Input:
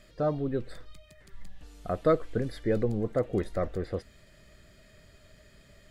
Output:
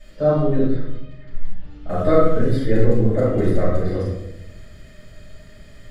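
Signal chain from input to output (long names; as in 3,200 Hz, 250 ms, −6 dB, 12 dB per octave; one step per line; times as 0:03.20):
0:00.65–0:01.89: high-frequency loss of the air 250 metres
rectangular room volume 260 cubic metres, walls mixed, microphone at 7.2 metres
level −7 dB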